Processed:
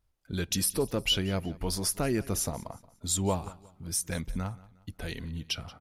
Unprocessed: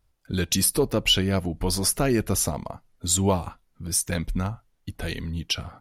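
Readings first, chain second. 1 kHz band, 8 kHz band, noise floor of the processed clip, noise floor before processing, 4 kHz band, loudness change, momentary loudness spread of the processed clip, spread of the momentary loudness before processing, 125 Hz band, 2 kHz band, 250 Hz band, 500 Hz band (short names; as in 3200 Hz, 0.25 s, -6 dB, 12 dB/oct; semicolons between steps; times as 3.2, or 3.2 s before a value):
-6.5 dB, -6.5 dB, -66 dBFS, -68 dBFS, -6.5 dB, -6.5 dB, 14 LU, 14 LU, -6.5 dB, -6.5 dB, -6.5 dB, -6.5 dB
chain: feedback echo 0.179 s, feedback 37%, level -20 dB; gain -6.5 dB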